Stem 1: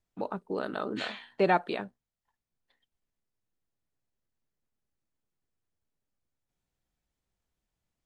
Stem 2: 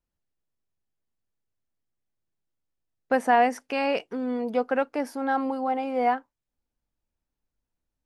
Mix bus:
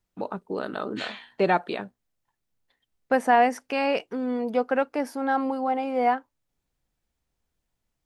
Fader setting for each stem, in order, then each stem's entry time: +2.5, +1.0 decibels; 0.00, 0.00 seconds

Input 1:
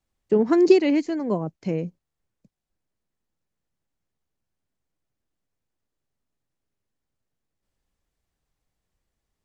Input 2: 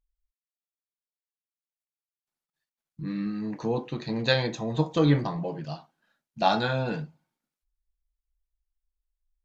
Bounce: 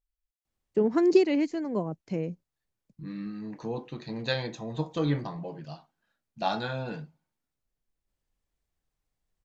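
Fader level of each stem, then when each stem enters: −5.0, −6.0 decibels; 0.45, 0.00 seconds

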